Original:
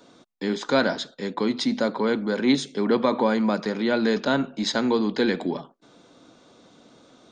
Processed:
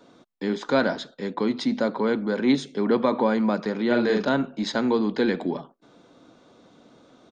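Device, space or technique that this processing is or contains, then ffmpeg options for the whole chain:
behind a face mask: -filter_complex "[0:a]highshelf=frequency=3400:gain=-8,asplit=3[link_01][link_02][link_03];[link_01]afade=type=out:start_time=3.89:duration=0.02[link_04];[link_02]asplit=2[link_05][link_06];[link_06]adelay=42,volume=-3dB[link_07];[link_05][link_07]amix=inputs=2:normalize=0,afade=type=in:start_time=3.89:duration=0.02,afade=type=out:start_time=4.29:duration=0.02[link_08];[link_03]afade=type=in:start_time=4.29:duration=0.02[link_09];[link_04][link_08][link_09]amix=inputs=3:normalize=0"

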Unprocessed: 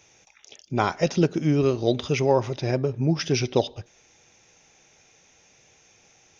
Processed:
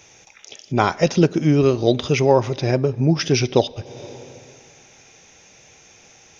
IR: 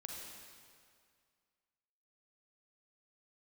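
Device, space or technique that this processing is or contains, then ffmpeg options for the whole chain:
ducked reverb: -filter_complex "[0:a]asplit=3[link_01][link_02][link_03];[1:a]atrim=start_sample=2205[link_04];[link_02][link_04]afir=irnorm=-1:irlink=0[link_05];[link_03]apad=whole_len=282059[link_06];[link_05][link_06]sidechaincompress=threshold=-40dB:ratio=10:attack=9.2:release=254,volume=-2dB[link_07];[link_01][link_07]amix=inputs=2:normalize=0,volume=5dB"

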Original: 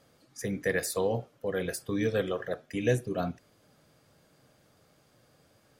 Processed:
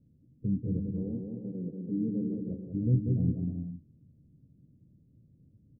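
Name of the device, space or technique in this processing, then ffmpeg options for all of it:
the neighbour's flat through the wall: -filter_complex "[0:a]asettb=1/sr,asplit=3[link_01][link_02][link_03];[link_01]atrim=end=0.864[link_04];[link_02]atrim=start=0.86:end=2.38,asetpts=PTS-STARTPTS,afade=type=in:duration=0.004:curve=qsin,afade=type=out:start_time=1.516:duration=0.004:curve=qsin,highpass=frequency=170:width=0.5412,highpass=frequency=170:width=1.3066[link_05];[link_03]atrim=start=2.376[link_06];[link_04][link_05]acrossfade=duration=0.004:curve1=hsin:curve2=qsin[link_07];[link_07][link_06]acrossfade=duration=0.004:curve1=qsin:curve2=hsin,lowpass=frequency=250:width=0.5412,lowpass=frequency=250:width=1.3066,equalizer=frequency=85:width_type=o:width=0.43:gain=3.5,aecho=1:1:190|313.5|393.8|446|479.9:0.631|0.398|0.251|0.158|0.1,volume=5dB"

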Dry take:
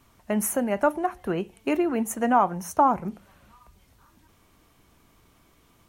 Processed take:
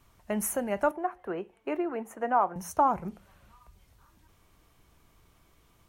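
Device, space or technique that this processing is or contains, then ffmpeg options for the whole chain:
low shelf boost with a cut just above: -filter_complex "[0:a]lowshelf=frequency=79:gain=6,equalizer=frequency=250:width_type=o:width=0.55:gain=-5,asettb=1/sr,asplit=3[link_01][link_02][link_03];[link_01]atrim=end=0.914[link_04];[link_02]atrim=start=0.91:end=2.56,asetpts=PTS-STARTPTS,afade=type=in:duration=0.004:curve=qsin,afade=type=out:start_time=1.646:duration=0.004:curve=qsin,acrossover=split=260 2300:gain=0.178 1 0.178[link_05][link_06][link_07];[link_05][link_06][link_07]amix=inputs=3:normalize=0[link_08];[link_03]atrim=start=2.556[link_09];[link_04][link_08]acrossfade=duration=0.004:curve1=hsin:curve2=qsin[link_10];[link_10][link_09]acrossfade=duration=0.004:curve1=qsin:curve2=hsin,volume=-4dB"

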